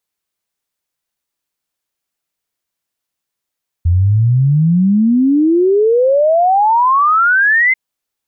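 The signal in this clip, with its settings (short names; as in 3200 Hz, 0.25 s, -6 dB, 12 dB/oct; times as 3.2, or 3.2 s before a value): log sweep 83 Hz -> 2100 Hz 3.89 s -8 dBFS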